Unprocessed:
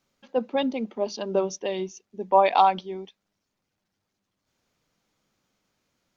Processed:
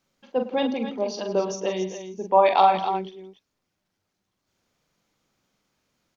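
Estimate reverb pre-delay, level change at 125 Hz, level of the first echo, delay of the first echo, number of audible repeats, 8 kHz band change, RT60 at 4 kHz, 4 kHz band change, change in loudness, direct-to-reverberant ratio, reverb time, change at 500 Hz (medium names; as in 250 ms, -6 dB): no reverb, no reading, -6.5 dB, 43 ms, 4, no reading, no reverb, +1.5 dB, +1.0 dB, no reverb, no reverb, +2.0 dB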